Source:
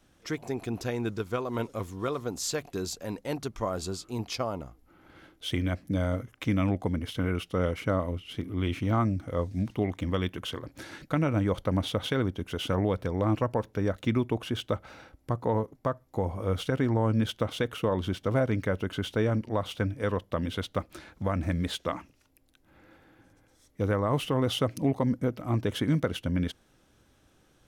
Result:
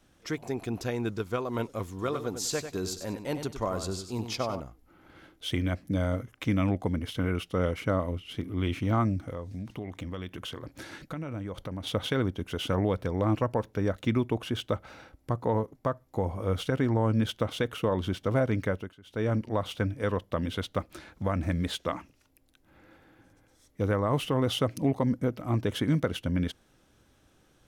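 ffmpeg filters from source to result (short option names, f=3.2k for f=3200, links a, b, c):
-filter_complex "[0:a]asettb=1/sr,asplit=3[a][b][c];[a]atrim=end=1.894[d];[b]atrim=start=1.89:end=4.6,asetpts=PTS-STARTPTS,afade=t=in:d=0.004:c=qsin,afade=t=out:st=2.706:d=0.004:c=qsin,aecho=1:1:96|192|288:0.355|0.0923|0.024,atrim=end_sample=119511[e];[c]atrim=start=4.596[f];[d][e]acrossfade=d=0.004:c1=hsin:c2=qsin[g];[g][f]acrossfade=d=0.004:c1=qsin:c2=hsin,asettb=1/sr,asplit=3[h][i][j];[h]atrim=end=9.304[k];[i]atrim=start=9.3:end=11.87,asetpts=PTS-STARTPTS,afade=t=in:d=0.004:c=qsin,afade=t=out:st=2.566:d=0.004:c=qsin,acompressor=threshold=-34dB:ratio=4:attack=3.2:release=140:knee=1:detection=peak[l];[j]atrim=start=11.866[m];[k][l]acrossfade=d=0.004:c1=hsin:c2=qsin[n];[n][m]acrossfade=d=0.004:c1=qsin:c2=hsin,asplit=3[o][p][q];[o]atrim=end=18.95,asetpts=PTS-STARTPTS,afade=t=out:st=18.68:d=0.27:silence=0.0707946[r];[p]atrim=start=18.95:end=19.04,asetpts=PTS-STARTPTS,volume=-23dB[s];[q]atrim=start=19.04,asetpts=PTS-STARTPTS,afade=t=in:d=0.27:silence=0.0707946[t];[r][s][t]concat=n=3:v=0:a=1"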